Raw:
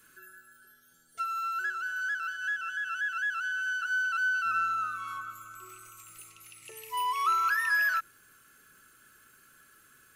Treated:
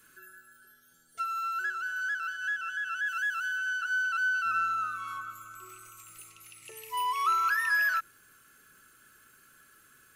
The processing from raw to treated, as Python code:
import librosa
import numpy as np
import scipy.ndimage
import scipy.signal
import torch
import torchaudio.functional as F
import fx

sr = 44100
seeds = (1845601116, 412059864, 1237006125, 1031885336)

y = fx.high_shelf(x, sr, hz=fx.line((3.06, 5600.0), (3.57, 11000.0)), db=9.5, at=(3.06, 3.57), fade=0.02)